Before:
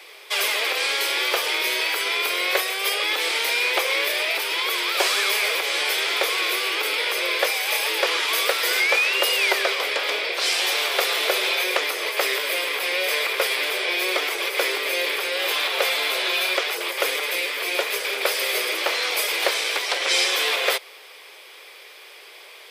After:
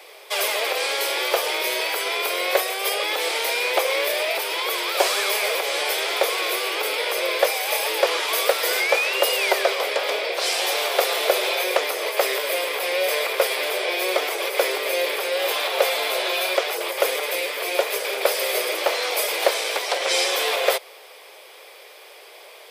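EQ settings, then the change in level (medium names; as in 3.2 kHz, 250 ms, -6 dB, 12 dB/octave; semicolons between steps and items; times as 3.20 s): peaking EQ 620 Hz +12 dB 1.6 oct; treble shelf 5.1 kHz +8 dB; -5.5 dB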